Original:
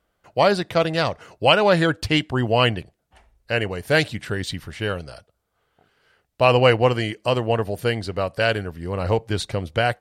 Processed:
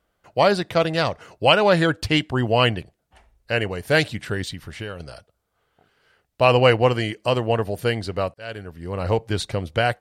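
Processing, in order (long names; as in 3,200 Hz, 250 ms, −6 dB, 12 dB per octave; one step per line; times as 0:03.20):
0:04.47–0:05.00: downward compressor 4 to 1, threshold −30 dBFS, peak gain reduction 8.5 dB
0:08.34–0:09.33: fade in equal-power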